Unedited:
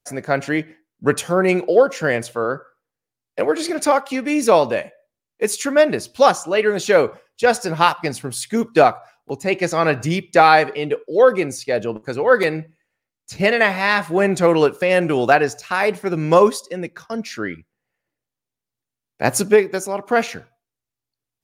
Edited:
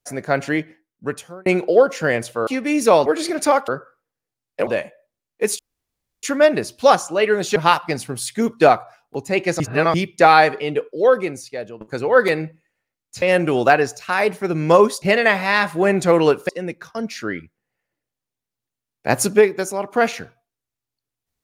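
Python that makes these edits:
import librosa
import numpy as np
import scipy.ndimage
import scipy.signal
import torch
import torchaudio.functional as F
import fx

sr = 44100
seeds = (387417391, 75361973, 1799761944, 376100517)

y = fx.edit(x, sr, fx.fade_out_span(start_s=0.52, length_s=0.94),
    fx.swap(start_s=2.47, length_s=0.99, other_s=4.08, other_length_s=0.59),
    fx.insert_room_tone(at_s=5.59, length_s=0.64),
    fx.cut(start_s=6.92, length_s=0.79),
    fx.reverse_span(start_s=9.75, length_s=0.34),
    fx.fade_out_to(start_s=10.99, length_s=0.97, floor_db=-15.0),
    fx.move(start_s=13.37, length_s=1.47, to_s=16.64), tone=tone)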